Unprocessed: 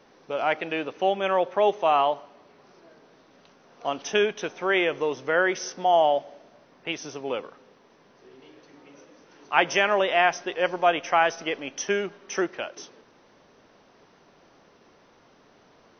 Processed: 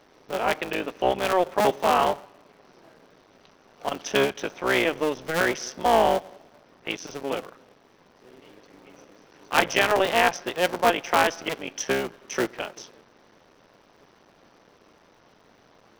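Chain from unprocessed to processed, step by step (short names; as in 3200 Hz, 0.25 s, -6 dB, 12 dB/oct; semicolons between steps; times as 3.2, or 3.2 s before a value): cycle switcher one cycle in 3, muted; gain +2 dB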